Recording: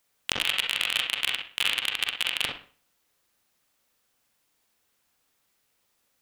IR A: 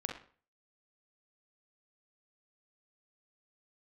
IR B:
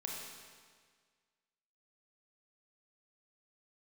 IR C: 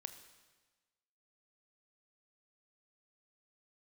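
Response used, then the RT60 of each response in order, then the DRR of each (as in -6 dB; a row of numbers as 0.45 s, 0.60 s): A; 0.45 s, 1.7 s, 1.3 s; 1.0 dB, -2.5 dB, 8.5 dB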